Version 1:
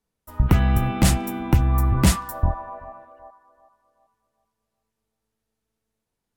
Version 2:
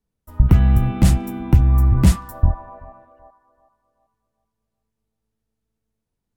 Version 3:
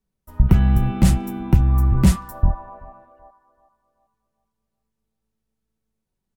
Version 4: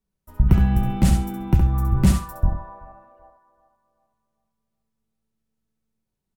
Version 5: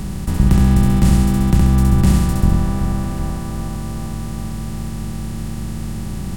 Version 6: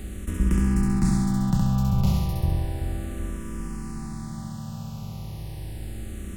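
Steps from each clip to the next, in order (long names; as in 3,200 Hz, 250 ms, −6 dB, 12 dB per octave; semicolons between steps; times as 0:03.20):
low-shelf EQ 300 Hz +11 dB; level −5 dB
comb filter 5.3 ms, depth 33%; level −1 dB
repeating echo 67 ms, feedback 22%, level −6 dB; level −2.5 dB
compressor on every frequency bin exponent 0.2; level −1.5 dB
frequency shifter mixed with the dry sound −0.33 Hz; level −6 dB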